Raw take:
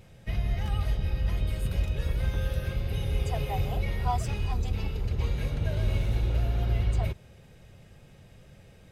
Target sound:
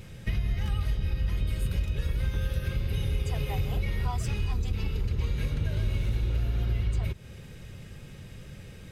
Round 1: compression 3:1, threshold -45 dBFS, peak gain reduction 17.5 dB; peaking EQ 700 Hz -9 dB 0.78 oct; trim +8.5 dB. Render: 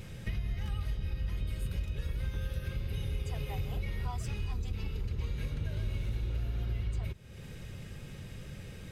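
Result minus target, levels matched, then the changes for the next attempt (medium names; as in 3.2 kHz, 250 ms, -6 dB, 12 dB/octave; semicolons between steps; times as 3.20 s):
compression: peak gain reduction +6.5 dB
change: compression 3:1, threshold -35.5 dBFS, peak gain reduction 11 dB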